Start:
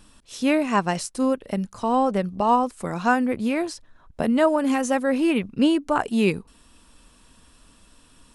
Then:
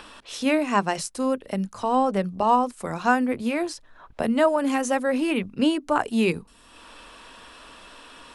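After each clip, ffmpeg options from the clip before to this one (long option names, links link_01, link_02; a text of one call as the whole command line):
ffmpeg -i in.wav -filter_complex "[0:a]acrossover=split=370|4100[link_01][link_02][link_03];[link_01]flanger=delay=19.5:depth=5.9:speed=0.52[link_04];[link_02]acompressor=mode=upward:threshold=-33dB:ratio=2.5[link_05];[link_04][link_05][link_03]amix=inputs=3:normalize=0" out.wav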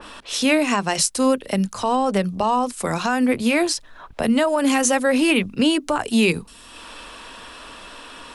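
ffmpeg -i in.wav -filter_complex "[0:a]acrossover=split=130[link_01][link_02];[link_02]alimiter=limit=-17.5dB:level=0:latency=1:release=119[link_03];[link_01][link_03]amix=inputs=2:normalize=0,adynamicequalizer=threshold=0.00708:dfrequency=2100:dqfactor=0.7:tfrequency=2100:tqfactor=0.7:attack=5:release=100:ratio=0.375:range=3.5:mode=boostabove:tftype=highshelf,volume=6.5dB" out.wav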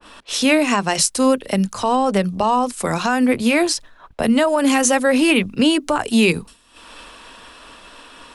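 ffmpeg -i in.wav -af "agate=range=-33dB:threshold=-34dB:ratio=3:detection=peak,volume=2.5dB" out.wav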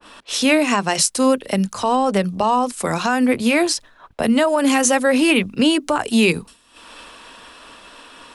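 ffmpeg -i in.wav -af "lowshelf=frequency=66:gain=-8" out.wav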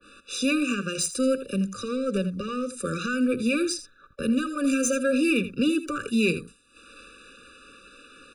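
ffmpeg -i in.wav -af "asoftclip=type=tanh:threshold=-9dB,aecho=1:1:82:0.224,afftfilt=real='re*eq(mod(floor(b*sr/1024/580),2),0)':imag='im*eq(mod(floor(b*sr/1024/580),2),0)':win_size=1024:overlap=0.75,volume=-5.5dB" out.wav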